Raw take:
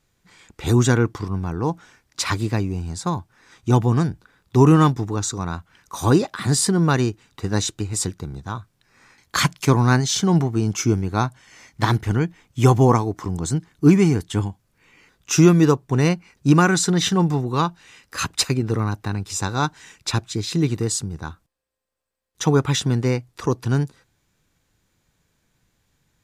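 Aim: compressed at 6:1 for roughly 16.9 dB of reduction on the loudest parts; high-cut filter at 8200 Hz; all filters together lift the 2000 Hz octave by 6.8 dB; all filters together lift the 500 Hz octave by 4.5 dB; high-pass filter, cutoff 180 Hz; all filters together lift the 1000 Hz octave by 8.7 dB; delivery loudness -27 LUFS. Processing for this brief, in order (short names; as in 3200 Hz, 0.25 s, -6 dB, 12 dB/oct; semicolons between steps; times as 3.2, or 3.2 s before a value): HPF 180 Hz; LPF 8200 Hz; bell 500 Hz +4.5 dB; bell 1000 Hz +8 dB; bell 2000 Hz +5.5 dB; compressor 6:1, threshold -25 dBFS; gain +3 dB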